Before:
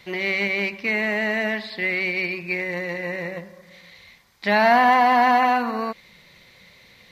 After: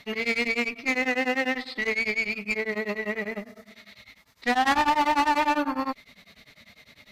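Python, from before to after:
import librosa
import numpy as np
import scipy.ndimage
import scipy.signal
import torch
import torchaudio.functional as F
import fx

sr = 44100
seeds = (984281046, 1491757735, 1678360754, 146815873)

p1 = fx.pitch_keep_formants(x, sr, semitones=3.0)
p2 = 10.0 ** (-19.0 / 20.0) * (np.abs((p1 / 10.0 ** (-19.0 / 20.0) + 3.0) % 4.0 - 2.0) - 1.0)
p3 = p1 + (p2 * 10.0 ** (-7.0 / 20.0))
p4 = fx.tube_stage(p3, sr, drive_db=15.0, bias=0.45)
y = p4 * np.abs(np.cos(np.pi * 10.0 * np.arange(len(p4)) / sr))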